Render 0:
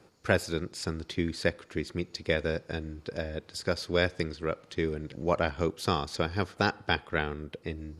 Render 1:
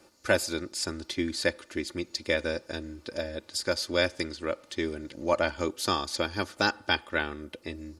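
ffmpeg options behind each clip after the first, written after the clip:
ffmpeg -i in.wav -af "bass=frequency=250:gain=-5,treble=frequency=4000:gain=7,aecho=1:1:3.4:0.59" out.wav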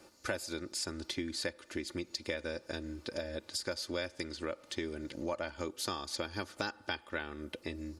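ffmpeg -i in.wav -af "acompressor=threshold=-35dB:ratio=4" out.wav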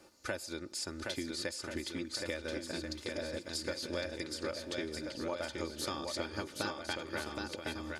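ffmpeg -i in.wav -af "aecho=1:1:770|1386|1879|2273|2588:0.631|0.398|0.251|0.158|0.1,volume=-2dB" out.wav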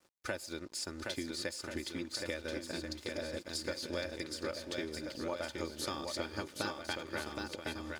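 ffmpeg -i in.wav -af "aeval=exprs='sgn(val(0))*max(abs(val(0))-0.00126,0)':channel_layout=same" out.wav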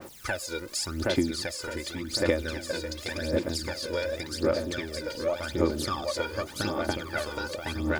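ffmpeg -i in.wav -af "aeval=exprs='val(0)+0.5*0.00531*sgn(val(0))':channel_layout=same,aphaser=in_gain=1:out_gain=1:delay=2.1:decay=0.69:speed=0.88:type=sinusoidal,adynamicequalizer=threshold=0.00501:dfrequency=1700:dqfactor=0.7:tfrequency=1700:tqfactor=0.7:attack=5:release=100:ratio=0.375:range=2:mode=cutabove:tftype=highshelf,volume=5dB" out.wav

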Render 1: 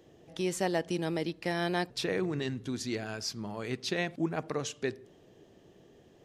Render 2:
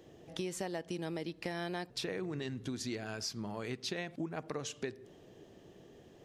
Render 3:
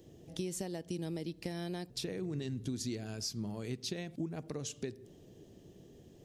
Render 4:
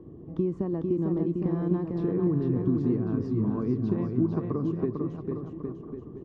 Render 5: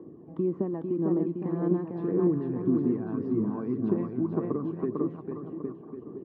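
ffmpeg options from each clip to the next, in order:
ffmpeg -i in.wav -af "acompressor=threshold=-37dB:ratio=6,volume=1.5dB" out.wav
ffmpeg -i in.wav -af "equalizer=frequency=1300:width_type=o:width=3:gain=-14.5,volume=5dB" out.wav
ffmpeg -i in.wav -af "lowpass=frequency=1100:width_type=q:width=9.1,lowshelf=frequency=470:width_type=q:width=1.5:gain=9.5,aecho=1:1:450|810|1098|1328|1513:0.631|0.398|0.251|0.158|0.1" out.wav
ffmpeg -i in.wav -af "aphaser=in_gain=1:out_gain=1:delay=1.3:decay=0.37:speed=1.8:type=sinusoidal,highpass=230,lowpass=2100" out.wav

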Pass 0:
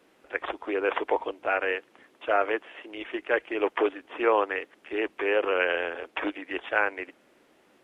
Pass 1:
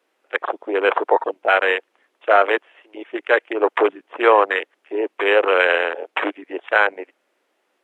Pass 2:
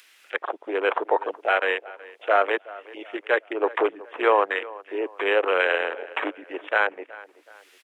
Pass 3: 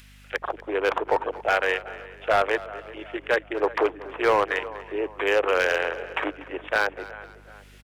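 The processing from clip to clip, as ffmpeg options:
ffmpeg -i in.wav -af "afwtdn=0.0282,highpass=430,alimiter=level_in=12dB:limit=-1dB:release=50:level=0:latency=1,volume=-1dB" out.wav
ffmpeg -i in.wav -filter_complex "[0:a]acrossover=split=1700[link_01][link_02];[link_02]acompressor=mode=upward:threshold=-30dB:ratio=2.5[link_03];[link_01][link_03]amix=inputs=2:normalize=0,asplit=2[link_04][link_05];[link_05]adelay=373,lowpass=frequency=2800:poles=1,volume=-19dB,asplit=2[link_06][link_07];[link_07]adelay=373,lowpass=frequency=2800:poles=1,volume=0.42,asplit=2[link_08][link_09];[link_09]adelay=373,lowpass=frequency=2800:poles=1,volume=0.42[link_10];[link_04][link_06][link_08][link_10]amix=inputs=4:normalize=0,volume=-5.5dB" out.wav
ffmpeg -i in.wav -filter_complex "[0:a]asoftclip=type=hard:threshold=-14dB,aeval=exprs='val(0)+0.00316*(sin(2*PI*50*n/s)+sin(2*PI*2*50*n/s)/2+sin(2*PI*3*50*n/s)/3+sin(2*PI*4*50*n/s)/4+sin(2*PI*5*50*n/s)/5)':channel_layout=same,asplit=4[link_01][link_02][link_03][link_04];[link_02]adelay=241,afreqshift=-30,volume=-18dB[link_05];[link_03]adelay=482,afreqshift=-60,volume=-25.7dB[link_06];[link_04]adelay=723,afreqshift=-90,volume=-33.5dB[link_07];[link_01][link_05][link_06][link_07]amix=inputs=4:normalize=0" out.wav

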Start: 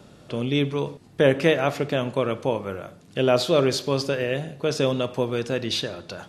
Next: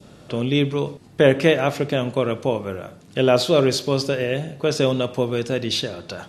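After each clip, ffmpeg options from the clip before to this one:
ffmpeg -i in.wav -af "adynamicequalizer=threshold=0.0158:dfrequency=1200:dqfactor=0.71:tfrequency=1200:tqfactor=0.71:attack=5:release=100:ratio=0.375:range=2:mode=cutabove:tftype=bell,volume=3.5dB" out.wav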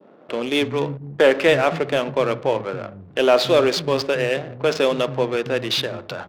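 ffmpeg -i in.wav -filter_complex "[0:a]adynamicsmooth=sensitivity=7:basefreq=520,acrossover=split=200[link_01][link_02];[link_01]adelay=280[link_03];[link_03][link_02]amix=inputs=2:normalize=0,asplit=2[link_04][link_05];[link_05]highpass=frequency=720:poles=1,volume=11dB,asoftclip=type=tanh:threshold=-3.5dB[link_06];[link_04][link_06]amix=inputs=2:normalize=0,lowpass=frequency=2800:poles=1,volume=-6dB" out.wav

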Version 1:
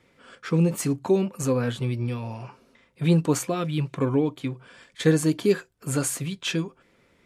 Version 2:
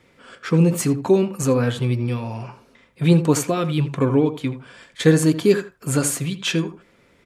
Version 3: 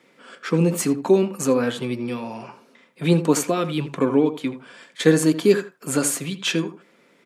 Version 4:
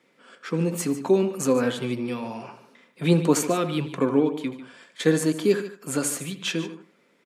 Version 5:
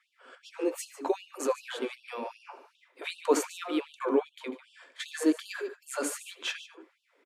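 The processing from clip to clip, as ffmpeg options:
ffmpeg -i in.wav -filter_complex "[0:a]asplit=2[link_01][link_02];[link_02]adelay=81,lowpass=frequency=2000:poles=1,volume=-11.5dB,asplit=2[link_03][link_04];[link_04]adelay=81,lowpass=frequency=2000:poles=1,volume=0.18[link_05];[link_01][link_03][link_05]amix=inputs=3:normalize=0,volume=5dB" out.wav
ffmpeg -i in.wav -af "highpass=frequency=180:width=0.5412,highpass=frequency=180:width=1.3066" out.wav
ffmpeg -i in.wav -af "dynaudnorm=framelen=240:gausssize=9:maxgain=11.5dB,aecho=1:1:146:0.2,volume=-6.5dB" out.wav
ffmpeg -i in.wav -af "highshelf=frequency=2900:gain=-9.5,afftfilt=real='re*gte(b*sr/1024,230*pow(2700/230,0.5+0.5*sin(2*PI*2.6*pts/sr)))':imag='im*gte(b*sr/1024,230*pow(2700/230,0.5+0.5*sin(2*PI*2.6*pts/sr)))':win_size=1024:overlap=0.75" out.wav

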